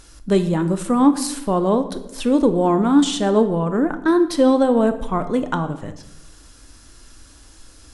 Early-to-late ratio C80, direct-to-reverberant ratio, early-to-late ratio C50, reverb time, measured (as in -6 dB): 14.5 dB, 9.5 dB, 12.5 dB, 0.95 s